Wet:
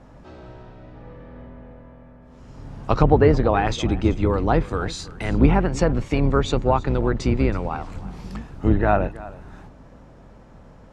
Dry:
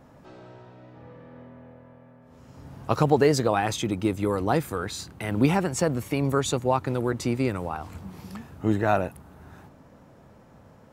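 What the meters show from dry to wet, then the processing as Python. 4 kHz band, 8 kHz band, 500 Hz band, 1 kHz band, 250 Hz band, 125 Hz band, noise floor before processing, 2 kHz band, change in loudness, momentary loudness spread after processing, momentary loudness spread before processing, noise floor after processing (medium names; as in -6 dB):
+1.0 dB, -4.5 dB, +3.5 dB, +3.5 dB, +4.0 dB, +6.0 dB, -53 dBFS, +3.0 dB, +4.5 dB, 18 LU, 14 LU, -47 dBFS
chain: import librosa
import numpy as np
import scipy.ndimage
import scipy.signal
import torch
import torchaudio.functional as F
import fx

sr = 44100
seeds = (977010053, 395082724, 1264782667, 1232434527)

p1 = fx.octave_divider(x, sr, octaves=2, level_db=1.0)
p2 = scipy.signal.sosfilt(scipy.signal.butter(2, 7600.0, 'lowpass', fs=sr, output='sos'), p1)
p3 = fx.env_lowpass_down(p2, sr, base_hz=2200.0, full_db=-16.0)
p4 = p3 + fx.echo_single(p3, sr, ms=323, db=-18.5, dry=0)
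y = F.gain(torch.from_numpy(p4), 3.5).numpy()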